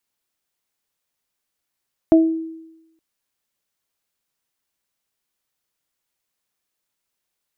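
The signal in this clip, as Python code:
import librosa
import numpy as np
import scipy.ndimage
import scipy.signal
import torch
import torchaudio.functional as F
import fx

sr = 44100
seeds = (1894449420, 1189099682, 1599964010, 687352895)

y = fx.additive(sr, length_s=0.87, hz=324.0, level_db=-7.0, upper_db=(-5,), decay_s=0.95, upper_decays_s=(0.29,))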